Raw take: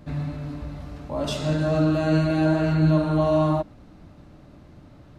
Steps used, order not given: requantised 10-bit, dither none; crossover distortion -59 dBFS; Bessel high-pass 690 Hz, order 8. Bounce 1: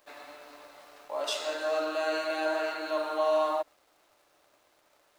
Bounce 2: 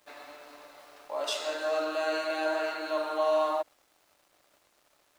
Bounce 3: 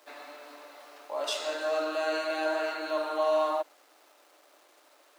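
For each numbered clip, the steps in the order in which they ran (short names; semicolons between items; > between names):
Bessel high-pass > requantised > crossover distortion; requantised > Bessel high-pass > crossover distortion; requantised > crossover distortion > Bessel high-pass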